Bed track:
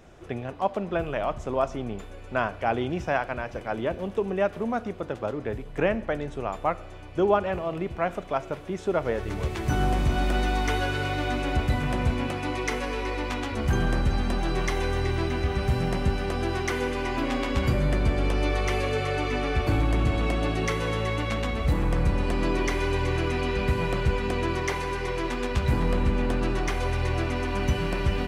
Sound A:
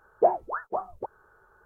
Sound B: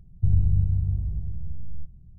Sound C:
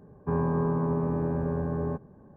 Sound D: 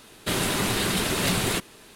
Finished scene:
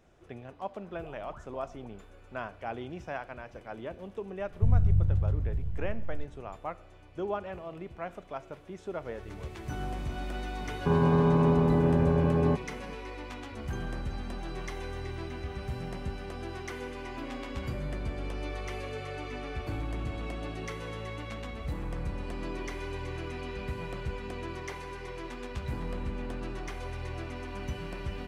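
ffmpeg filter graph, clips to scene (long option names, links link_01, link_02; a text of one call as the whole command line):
ffmpeg -i bed.wav -i cue0.wav -i cue1.wav -i cue2.wav -filter_complex "[0:a]volume=-11.5dB[link_01];[1:a]acompressor=threshold=-41dB:ratio=6:attack=3.2:release=140:knee=1:detection=peak[link_02];[3:a]alimiter=level_in=21dB:limit=-1dB:release=50:level=0:latency=1[link_03];[link_02]atrim=end=1.65,asetpts=PTS-STARTPTS,volume=-7.5dB,afade=type=in:duration=0.004:curve=hsin,afade=type=out:start_time=1.646:duration=0.004:curve=hsin,adelay=810[link_04];[2:a]atrim=end=2.18,asetpts=PTS-STARTPTS,volume=-2.5dB,afade=type=in:duration=0.004:curve=hsin,afade=type=out:start_time=2.176:duration=0.004:curve=hsin,adelay=4390[link_05];[link_03]atrim=end=2.36,asetpts=PTS-STARTPTS,volume=-15dB,afade=type=in:duration=0.004:curve=hsin,afade=type=out:start_time=2.356:duration=0.004:curve=hsin,adelay=10590[link_06];[link_01][link_04][link_05][link_06]amix=inputs=4:normalize=0" out.wav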